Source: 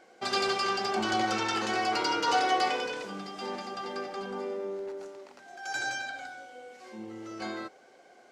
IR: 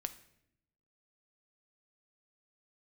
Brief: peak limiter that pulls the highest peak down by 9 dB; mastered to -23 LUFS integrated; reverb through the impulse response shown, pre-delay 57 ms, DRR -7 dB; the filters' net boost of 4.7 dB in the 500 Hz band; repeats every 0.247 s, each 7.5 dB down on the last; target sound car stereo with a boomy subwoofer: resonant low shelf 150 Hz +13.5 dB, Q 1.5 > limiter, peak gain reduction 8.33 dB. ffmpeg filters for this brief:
-filter_complex "[0:a]equalizer=f=500:t=o:g=8,alimiter=limit=-21dB:level=0:latency=1,aecho=1:1:247|494|741|988|1235:0.422|0.177|0.0744|0.0312|0.0131,asplit=2[a][b];[1:a]atrim=start_sample=2205,adelay=57[c];[b][c]afir=irnorm=-1:irlink=0,volume=8.5dB[d];[a][d]amix=inputs=2:normalize=0,lowshelf=f=150:t=q:w=1.5:g=13.5,volume=3.5dB,alimiter=limit=-14dB:level=0:latency=1"

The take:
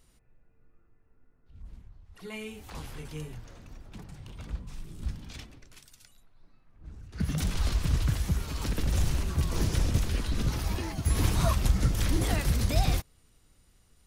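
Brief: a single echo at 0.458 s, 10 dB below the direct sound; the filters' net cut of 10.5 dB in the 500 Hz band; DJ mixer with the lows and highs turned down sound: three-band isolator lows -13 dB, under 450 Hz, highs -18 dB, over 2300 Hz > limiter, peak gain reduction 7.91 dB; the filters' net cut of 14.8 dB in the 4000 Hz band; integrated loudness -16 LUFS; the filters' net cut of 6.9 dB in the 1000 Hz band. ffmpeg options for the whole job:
-filter_complex "[0:a]acrossover=split=450 2300:gain=0.224 1 0.126[a][b][c];[a][b][c]amix=inputs=3:normalize=0,equalizer=f=500:t=o:g=-8.5,equalizer=f=1k:t=o:g=-5,equalizer=f=4k:t=o:g=-3,aecho=1:1:458:0.316,volume=29dB,alimiter=limit=-3.5dB:level=0:latency=1"

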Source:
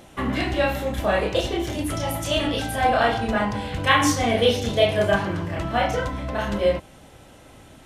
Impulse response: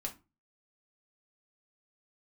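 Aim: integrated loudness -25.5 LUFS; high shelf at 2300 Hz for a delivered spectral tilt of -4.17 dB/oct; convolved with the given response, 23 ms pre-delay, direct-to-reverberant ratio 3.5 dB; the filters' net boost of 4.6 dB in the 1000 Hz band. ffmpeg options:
-filter_complex "[0:a]equalizer=f=1k:t=o:g=7.5,highshelf=f=2.3k:g=-7.5,asplit=2[a][b];[1:a]atrim=start_sample=2205,adelay=23[c];[b][c]afir=irnorm=-1:irlink=0,volume=-3dB[d];[a][d]amix=inputs=2:normalize=0,volume=-5.5dB"

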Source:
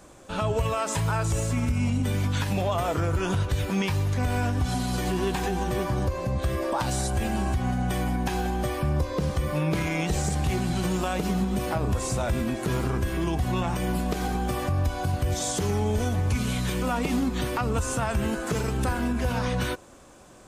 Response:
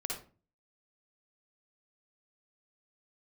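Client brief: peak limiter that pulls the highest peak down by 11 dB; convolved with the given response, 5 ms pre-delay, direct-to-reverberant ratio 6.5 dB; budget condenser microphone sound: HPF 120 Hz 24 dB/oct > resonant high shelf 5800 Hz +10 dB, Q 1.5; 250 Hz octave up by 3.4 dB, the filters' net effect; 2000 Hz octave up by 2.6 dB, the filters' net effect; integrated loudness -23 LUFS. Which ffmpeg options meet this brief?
-filter_complex "[0:a]equalizer=f=250:t=o:g=4.5,equalizer=f=2k:t=o:g=4.5,alimiter=level_in=0.5dB:limit=-24dB:level=0:latency=1,volume=-0.5dB,asplit=2[a][b];[1:a]atrim=start_sample=2205,adelay=5[c];[b][c]afir=irnorm=-1:irlink=0,volume=-8dB[d];[a][d]amix=inputs=2:normalize=0,highpass=f=120:w=0.5412,highpass=f=120:w=1.3066,highshelf=f=5.8k:t=q:w=1.5:g=10,volume=8dB"

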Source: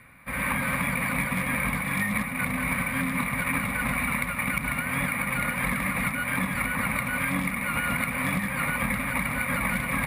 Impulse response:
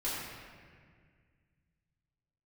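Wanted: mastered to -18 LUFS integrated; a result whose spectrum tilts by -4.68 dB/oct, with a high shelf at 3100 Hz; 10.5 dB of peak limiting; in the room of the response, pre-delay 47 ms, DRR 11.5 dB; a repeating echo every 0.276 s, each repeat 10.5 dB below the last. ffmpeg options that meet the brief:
-filter_complex "[0:a]highshelf=f=3.1k:g=-6.5,alimiter=level_in=1dB:limit=-24dB:level=0:latency=1,volume=-1dB,aecho=1:1:276|552|828:0.299|0.0896|0.0269,asplit=2[a][b];[1:a]atrim=start_sample=2205,adelay=47[c];[b][c]afir=irnorm=-1:irlink=0,volume=-17dB[d];[a][d]amix=inputs=2:normalize=0,volume=14.5dB"

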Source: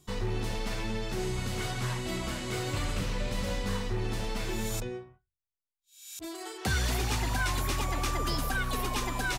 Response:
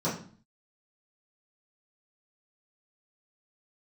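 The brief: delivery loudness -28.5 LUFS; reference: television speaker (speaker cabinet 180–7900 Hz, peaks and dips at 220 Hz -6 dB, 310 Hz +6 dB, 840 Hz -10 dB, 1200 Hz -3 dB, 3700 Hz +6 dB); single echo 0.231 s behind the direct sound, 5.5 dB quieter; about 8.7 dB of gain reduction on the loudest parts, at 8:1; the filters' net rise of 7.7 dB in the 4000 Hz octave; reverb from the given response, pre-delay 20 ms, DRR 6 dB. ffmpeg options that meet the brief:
-filter_complex "[0:a]equalizer=f=4k:t=o:g=5.5,acompressor=threshold=-34dB:ratio=8,aecho=1:1:231:0.531,asplit=2[a][b];[1:a]atrim=start_sample=2205,adelay=20[c];[b][c]afir=irnorm=-1:irlink=0,volume=-15.5dB[d];[a][d]amix=inputs=2:normalize=0,highpass=f=180:w=0.5412,highpass=f=180:w=1.3066,equalizer=f=220:t=q:w=4:g=-6,equalizer=f=310:t=q:w=4:g=6,equalizer=f=840:t=q:w=4:g=-10,equalizer=f=1.2k:t=q:w=4:g=-3,equalizer=f=3.7k:t=q:w=4:g=6,lowpass=f=7.9k:w=0.5412,lowpass=f=7.9k:w=1.3066,volume=7.5dB"

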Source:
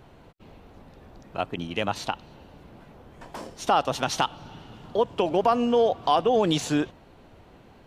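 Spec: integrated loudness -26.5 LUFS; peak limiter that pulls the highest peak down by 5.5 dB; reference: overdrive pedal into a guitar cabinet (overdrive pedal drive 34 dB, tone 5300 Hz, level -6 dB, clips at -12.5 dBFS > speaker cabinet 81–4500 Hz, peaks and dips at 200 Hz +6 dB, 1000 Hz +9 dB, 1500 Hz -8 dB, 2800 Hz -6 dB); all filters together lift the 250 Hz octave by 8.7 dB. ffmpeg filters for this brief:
-filter_complex "[0:a]equalizer=f=250:t=o:g=8.5,alimiter=limit=-12.5dB:level=0:latency=1,asplit=2[a][b];[b]highpass=f=720:p=1,volume=34dB,asoftclip=type=tanh:threshold=-12.5dB[c];[a][c]amix=inputs=2:normalize=0,lowpass=f=5.3k:p=1,volume=-6dB,highpass=81,equalizer=f=200:t=q:w=4:g=6,equalizer=f=1k:t=q:w=4:g=9,equalizer=f=1.5k:t=q:w=4:g=-8,equalizer=f=2.8k:t=q:w=4:g=-6,lowpass=f=4.5k:w=0.5412,lowpass=f=4.5k:w=1.3066,volume=-6.5dB"

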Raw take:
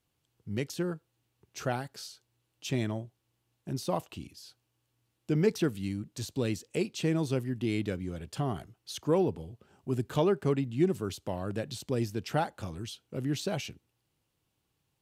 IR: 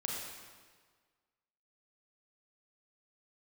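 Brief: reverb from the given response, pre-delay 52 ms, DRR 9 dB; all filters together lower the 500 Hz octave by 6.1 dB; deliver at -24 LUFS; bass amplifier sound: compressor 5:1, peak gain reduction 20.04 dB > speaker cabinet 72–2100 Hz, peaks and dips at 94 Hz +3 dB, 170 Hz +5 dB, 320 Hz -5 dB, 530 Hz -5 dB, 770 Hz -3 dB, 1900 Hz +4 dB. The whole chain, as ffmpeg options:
-filter_complex "[0:a]equalizer=f=500:t=o:g=-4.5,asplit=2[a][b];[1:a]atrim=start_sample=2205,adelay=52[c];[b][c]afir=irnorm=-1:irlink=0,volume=-11.5dB[d];[a][d]amix=inputs=2:normalize=0,acompressor=threshold=-45dB:ratio=5,highpass=f=72:w=0.5412,highpass=f=72:w=1.3066,equalizer=f=94:t=q:w=4:g=3,equalizer=f=170:t=q:w=4:g=5,equalizer=f=320:t=q:w=4:g=-5,equalizer=f=530:t=q:w=4:g=-5,equalizer=f=770:t=q:w=4:g=-3,equalizer=f=1.9k:t=q:w=4:g=4,lowpass=f=2.1k:w=0.5412,lowpass=f=2.1k:w=1.3066,volume=24.5dB"

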